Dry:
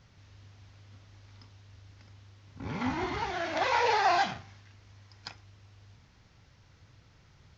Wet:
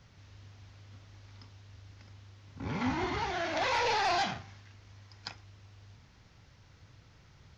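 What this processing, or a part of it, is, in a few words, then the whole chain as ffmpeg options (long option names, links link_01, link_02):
one-band saturation: -filter_complex "[0:a]acrossover=split=220|2500[link_01][link_02][link_03];[link_02]asoftclip=type=tanh:threshold=-28dB[link_04];[link_01][link_04][link_03]amix=inputs=3:normalize=0,volume=1dB"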